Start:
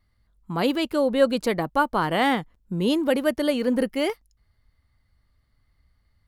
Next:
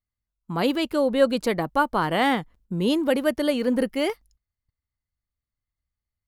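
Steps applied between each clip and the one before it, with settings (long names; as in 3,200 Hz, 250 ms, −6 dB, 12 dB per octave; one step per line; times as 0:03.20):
noise gate −55 dBFS, range −22 dB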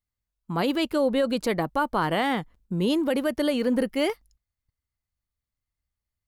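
brickwall limiter −14.5 dBFS, peak gain reduction 8 dB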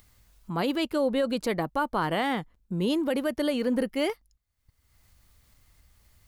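upward compression, threshold −34 dBFS
level −2.5 dB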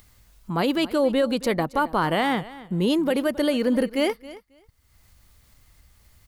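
repeating echo 271 ms, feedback 15%, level −18 dB
level +4.5 dB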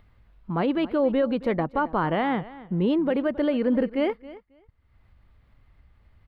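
high-frequency loss of the air 490 metres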